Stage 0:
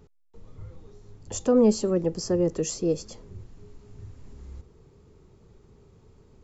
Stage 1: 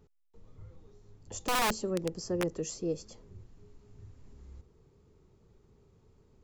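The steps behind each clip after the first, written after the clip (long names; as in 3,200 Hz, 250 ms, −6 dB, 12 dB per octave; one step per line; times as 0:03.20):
wrap-around overflow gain 14.5 dB
level −8 dB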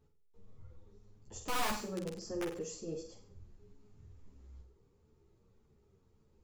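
flutter between parallel walls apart 8.2 metres, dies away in 0.48 s
string-ensemble chorus
level −4 dB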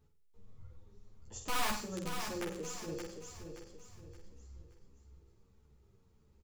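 parametric band 420 Hz −4.5 dB 2 octaves
on a send: repeating echo 574 ms, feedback 36%, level −7 dB
on the sum: level +1.5 dB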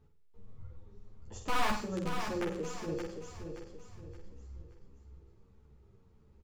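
low-pass filter 2,200 Hz 6 dB per octave
level +5 dB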